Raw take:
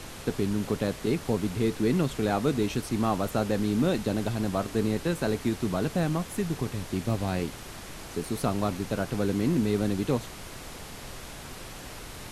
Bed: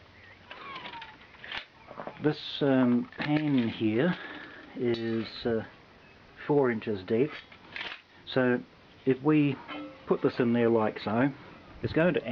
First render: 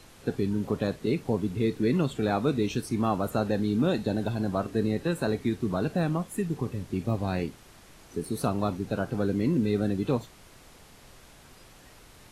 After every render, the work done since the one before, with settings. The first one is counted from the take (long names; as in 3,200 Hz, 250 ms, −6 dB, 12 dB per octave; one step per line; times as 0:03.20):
noise reduction from a noise print 11 dB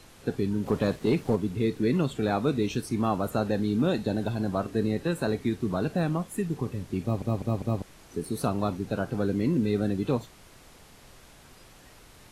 0:00.66–0:01.36: leveller curve on the samples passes 1
0:07.02: stutter in place 0.20 s, 4 plays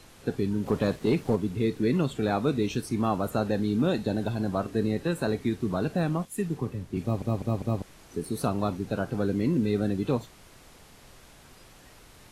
0:06.25–0:06.97: multiband upward and downward expander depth 40%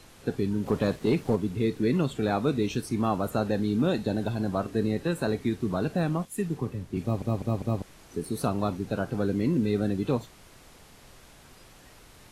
no processing that can be heard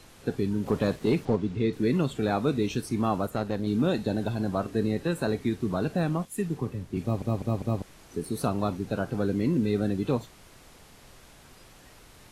0:01.25–0:01.73: low-pass filter 5,400 Hz
0:03.26–0:03.67: tube saturation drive 19 dB, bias 0.75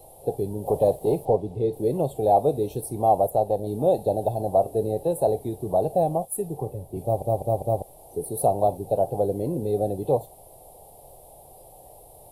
drawn EQ curve 140 Hz 0 dB, 230 Hz −10 dB, 550 Hz +11 dB, 790 Hz +13 dB, 1,400 Hz −28 dB, 3,700 Hz −10 dB, 6,500 Hz −12 dB, 10,000 Hz +11 dB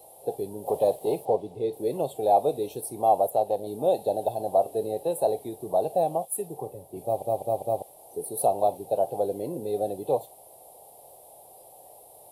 high-pass filter 490 Hz 6 dB per octave
dynamic equaliser 3,000 Hz, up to +5 dB, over −47 dBFS, Q 1.1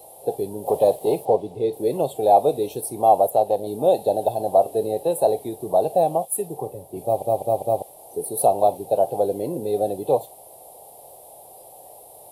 level +5.5 dB